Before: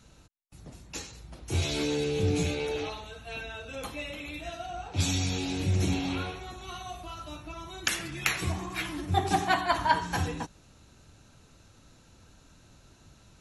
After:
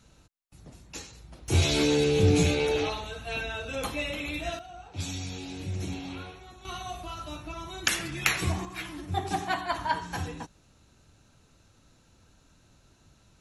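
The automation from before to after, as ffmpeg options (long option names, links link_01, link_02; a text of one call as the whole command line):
ffmpeg -i in.wav -af "asetnsamples=nb_out_samples=441:pad=0,asendcmd='1.48 volume volume 5.5dB;4.59 volume volume -7dB;6.65 volume volume 2.5dB;8.65 volume volume -4dB',volume=-2dB" out.wav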